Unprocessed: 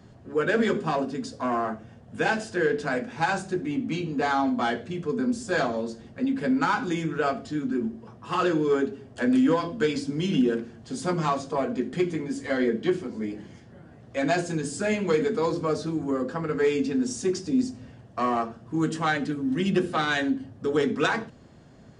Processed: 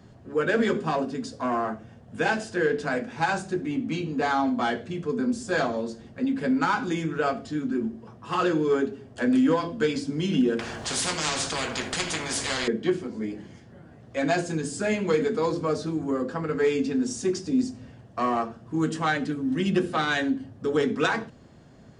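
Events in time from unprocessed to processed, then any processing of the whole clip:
10.59–12.68 spectral compressor 4:1

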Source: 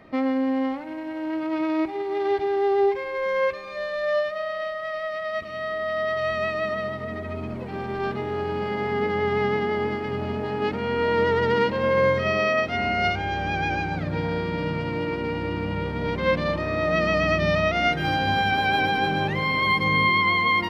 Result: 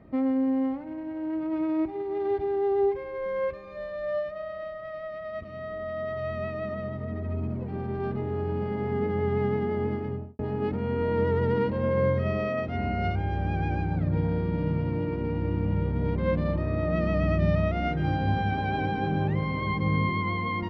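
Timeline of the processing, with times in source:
9.98–10.39 studio fade out
whole clip: HPF 48 Hz; tilt -4 dB/oct; gain -8.5 dB

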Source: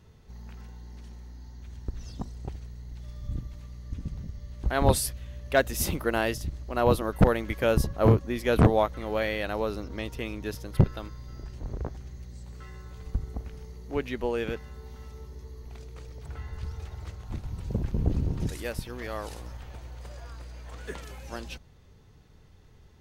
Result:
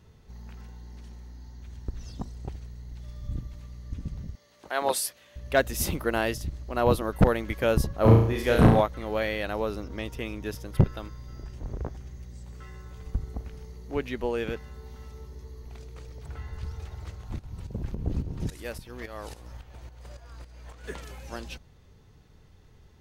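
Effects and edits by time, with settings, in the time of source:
4.35–5.36 HPF 490 Hz
8.01–8.81 flutter echo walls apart 6 m, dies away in 0.63 s
9.51–13.17 notch 4200 Hz
17.39–20.84 tremolo saw up 3.6 Hz, depth 70%

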